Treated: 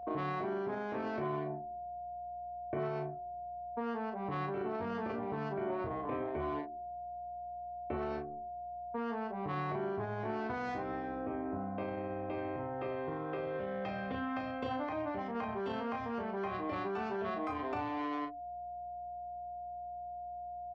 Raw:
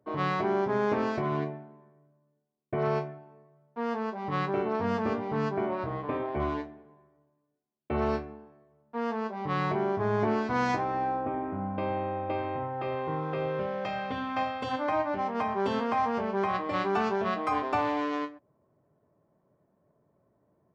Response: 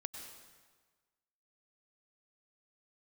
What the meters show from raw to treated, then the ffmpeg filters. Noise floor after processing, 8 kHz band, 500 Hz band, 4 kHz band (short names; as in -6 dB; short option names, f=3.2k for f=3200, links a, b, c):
-44 dBFS, n/a, -7.0 dB, -10.0 dB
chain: -filter_complex "[0:a]anlmdn=1.58,highshelf=f=3.9k:g=-9,aeval=exprs='val(0)+0.00631*sin(2*PI*710*n/s)':c=same,acrossover=split=170|550|1300[a][b][c][d];[b]acontrast=65[e];[a][e][c][d]amix=inputs=4:normalize=0,asubboost=boost=3:cutoff=97,alimiter=limit=-21.5dB:level=0:latency=1:release=23,aeval=exprs='val(0)+0.000631*(sin(2*PI*60*n/s)+sin(2*PI*2*60*n/s)/2+sin(2*PI*3*60*n/s)/3+sin(2*PI*4*60*n/s)/4+sin(2*PI*5*60*n/s)/5)':c=same,acrossover=split=450|1800[f][g][h];[f]acompressor=threshold=-41dB:ratio=4[i];[g]acompressor=threshold=-39dB:ratio=4[j];[h]acompressor=threshold=-48dB:ratio=4[k];[i][j][k]amix=inputs=3:normalize=0,asplit=2[l][m];[m]adelay=35,volume=-6dB[n];[l][n]amix=inputs=2:normalize=0,volume=-1dB"